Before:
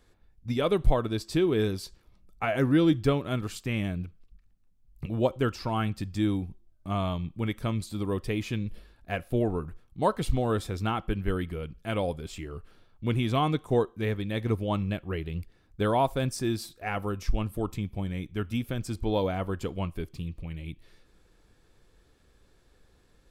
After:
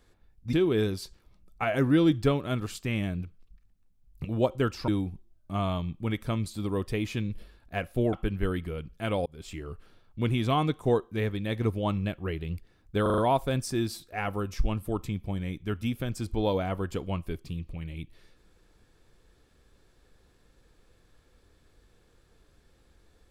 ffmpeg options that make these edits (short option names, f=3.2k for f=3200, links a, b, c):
-filter_complex "[0:a]asplit=9[a][b][c][d][e][f][g][h][i];[a]atrim=end=0.532[j];[b]atrim=start=1.338:end=5.692[k];[c]atrim=start=6.238:end=9.492[l];[d]atrim=start=10.978:end=12.11,asetpts=PTS-STARTPTS,afade=t=out:st=1.128:d=0.004:c=hsin[m];[e]atrim=start=12.11:end=15.912,asetpts=PTS-STARTPTS,afade=t=in:d=0.37:c=qsin[n];[f]atrim=start=15.868:end=15.912[o];[g]atrim=start=15.868:end=15.912[p];[h]atrim=start=15.868:end=15.912[q];[i]atrim=start=15.868[r];[j][k]acrossfade=d=0.004:c1=hsin:c2=hsin[s];[s][l]acrossfade=d=0.004:c1=hsin:c2=hsin[t];[m][n]concat=n=2:v=0:a=1[u];[t][u]acrossfade=d=0.004:c1=hsin:c2=hsin[v];[v][o]acrossfade=d=0.004:c1=hsin:c2=hsin[w];[w][p]acrossfade=d=0.004:c1=hsin:c2=hsin[x];[x][q]acrossfade=d=0.004:c1=hsin:c2=hsin[y];[y][r]acrossfade=d=0.004:c1=hsin:c2=hsin"